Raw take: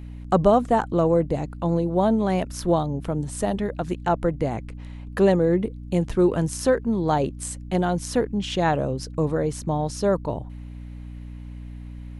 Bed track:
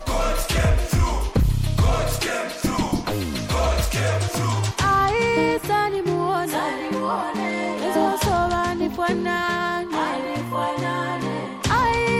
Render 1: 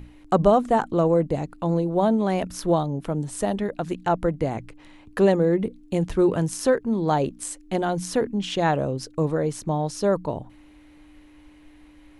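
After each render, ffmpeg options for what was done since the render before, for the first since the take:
-af "bandreject=f=60:t=h:w=6,bandreject=f=120:t=h:w=6,bandreject=f=180:t=h:w=6,bandreject=f=240:t=h:w=6"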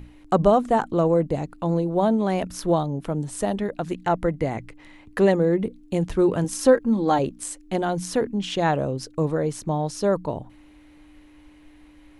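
-filter_complex "[0:a]asettb=1/sr,asplit=3[s0][s1][s2];[s0]atrim=end=3.924[s3];[s1]atrim=start=3.92:end=5.31,asetpts=PTS-STARTPTS,afade=t=in:d=0.004:c=qsin,afade=t=out:st=1.386:d=0.004:c=qsin,equalizer=f=2000:t=o:w=0.22:g=7[s4];[s2]atrim=start=5.306[s5];[s3][s4]acrossfade=d=0.004:c1=hsin:c2=qsin[s6];[s6][s5]acrossfade=d=0.004:c1=qsin:c2=hsin,asettb=1/sr,asplit=3[s7][s8][s9];[s7]atrim=end=6.444[s10];[s8]atrim=start=6.44:end=7.19,asetpts=PTS-STARTPTS,afade=t=in:d=0.004:c=qsin,afade=t=out:st=0.746:d=0.004:c=qsin,aecho=1:1:3.7:0.73,atrim=end_sample=33075[s11];[s9]atrim=start=7.186[s12];[s10][s11]acrossfade=d=0.004:c1=hsin:c2=qsin[s13];[s13][s12]acrossfade=d=0.004:c1=qsin:c2=hsin"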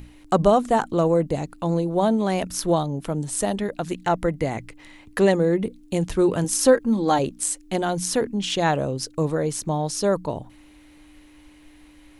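-af "highshelf=f=3300:g=9"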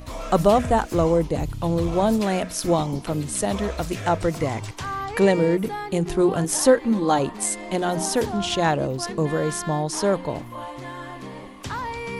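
-filter_complex "[1:a]volume=0.282[s0];[0:a][s0]amix=inputs=2:normalize=0"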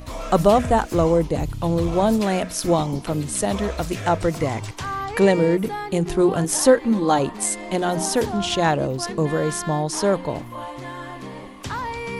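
-af "volume=1.19"

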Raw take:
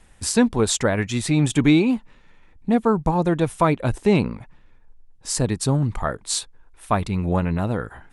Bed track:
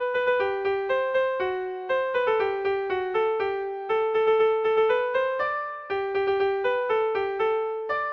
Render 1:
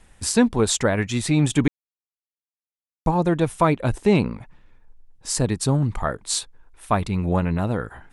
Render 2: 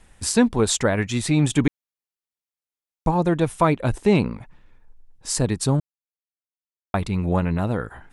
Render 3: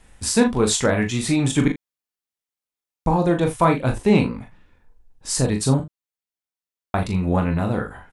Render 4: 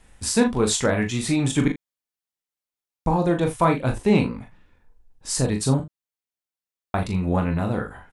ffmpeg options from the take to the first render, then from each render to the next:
-filter_complex "[0:a]asplit=3[s0][s1][s2];[s0]atrim=end=1.68,asetpts=PTS-STARTPTS,afade=t=out:st=1.676:d=0.004:c=hsin[s3];[s1]atrim=start=1.68:end=3.06,asetpts=PTS-STARTPTS,volume=0[s4];[s2]atrim=start=3.06,asetpts=PTS-STARTPTS,afade=t=in:d=0.004:c=hsin[s5];[s3][s4][s5]concat=n=3:v=0:a=1"
-filter_complex "[0:a]asplit=3[s0][s1][s2];[s0]atrim=end=5.8,asetpts=PTS-STARTPTS,afade=t=out:st=5.796:d=0.004:c=hsin[s3];[s1]atrim=start=5.8:end=6.94,asetpts=PTS-STARTPTS,volume=0[s4];[s2]atrim=start=6.94,asetpts=PTS-STARTPTS,afade=t=in:d=0.004:c=hsin[s5];[s3][s4][s5]concat=n=3:v=0:a=1"
-filter_complex "[0:a]asplit=2[s0][s1];[s1]adelay=38,volume=0.355[s2];[s0][s2]amix=inputs=2:normalize=0,aecho=1:1:23|42:0.376|0.376"
-af "volume=0.794"

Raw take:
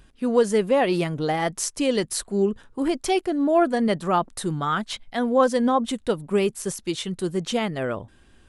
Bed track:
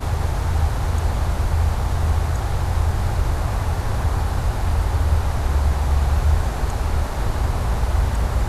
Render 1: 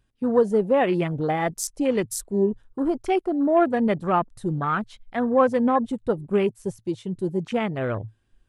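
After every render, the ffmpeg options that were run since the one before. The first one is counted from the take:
-af "afwtdn=0.0251,equalizer=f=110:w=4.4:g=11"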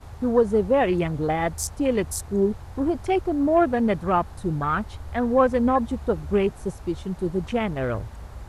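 -filter_complex "[1:a]volume=0.119[s0];[0:a][s0]amix=inputs=2:normalize=0"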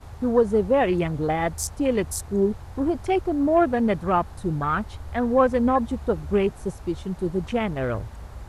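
-af anull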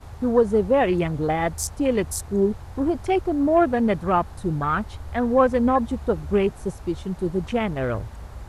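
-af "volume=1.12"

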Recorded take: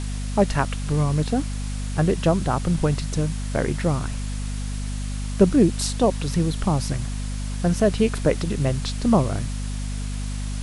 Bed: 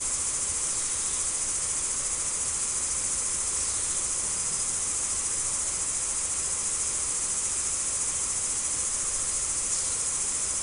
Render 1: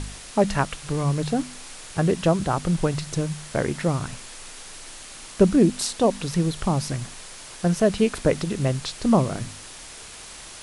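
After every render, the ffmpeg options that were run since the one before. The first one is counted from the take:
-af "bandreject=f=50:t=h:w=4,bandreject=f=100:t=h:w=4,bandreject=f=150:t=h:w=4,bandreject=f=200:t=h:w=4,bandreject=f=250:t=h:w=4"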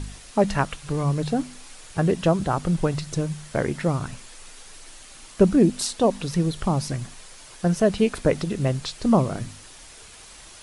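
-af "afftdn=nr=6:nf=-41"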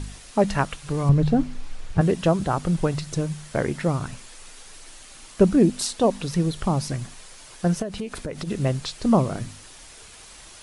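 -filter_complex "[0:a]asettb=1/sr,asplit=3[s0][s1][s2];[s0]atrim=end=1.094[s3];[s1]atrim=start=1.09:end=2.01,asetpts=PTS-STARTPTS,afade=t=in:d=0.004:c=qsin,afade=t=out:st=0.916:d=0.004:c=qsin,aemphasis=mode=reproduction:type=bsi[s4];[s2]atrim=start=2.006[s5];[s3][s4]acrossfade=d=0.004:c1=hsin:c2=qsin[s6];[s6][s5]acrossfade=d=0.004:c1=qsin:c2=hsin,asplit=3[s7][s8][s9];[s7]afade=t=out:st=7.81:d=0.02[s10];[s8]acompressor=threshold=0.0447:ratio=6:attack=3.2:release=140:knee=1:detection=peak,afade=t=in:st=7.81:d=0.02,afade=t=out:st=8.47:d=0.02[s11];[s9]afade=t=in:st=8.47:d=0.02[s12];[s10][s11][s12]amix=inputs=3:normalize=0"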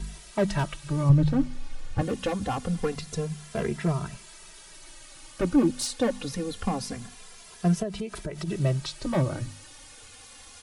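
-filter_complex "[0:a]acrossover=split=250[s0][s1];[s1]asoftclip=type=hard:threshold=0.112[s2];[s0][s2]amix=inputs=2:normalize=0,asplit=2[s3][s4];[s4]adelay=2.6,afreqshift=-0.25[s5];[s3][s5]amix=inputs=2:normalize=1"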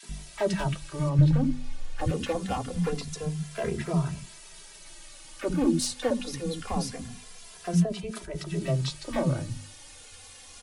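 -filter_complex "[0:a]asplit=2[s0][s1];[s1]adelay=12,volume=0.299[s2];[s0][s2]amix=inputs=2:normalize=0,acrossover=split=290|1300[s3][s4][s5];[s4]adelay=30[s6];[s3]adelay=90[s7];[s7][s6][s5]amix=inputs=3:normalize=0"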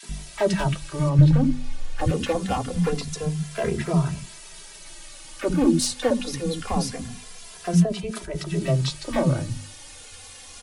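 -af "volume=1.78"

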